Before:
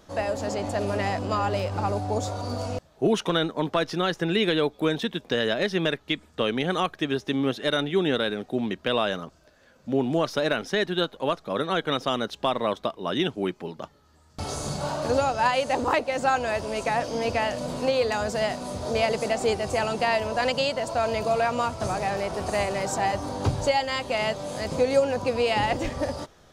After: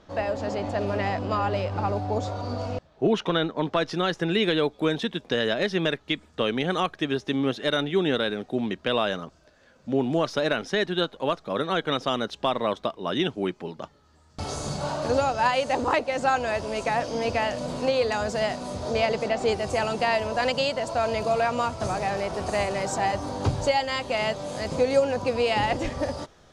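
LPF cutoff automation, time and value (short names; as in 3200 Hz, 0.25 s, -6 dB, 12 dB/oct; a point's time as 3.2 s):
3.5 s 4300 Hz
3.97 s 8600 Hz
18.8 s 8600 Hz
19.33 s 4200 Hz
19.59 s 9300 Hz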